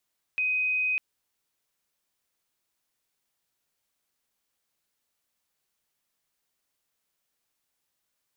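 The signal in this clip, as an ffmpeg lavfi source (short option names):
-f lavfi -i "aevalsrc='0.0668*sin(2*PI*2510*t)':d=0.6:s=44100"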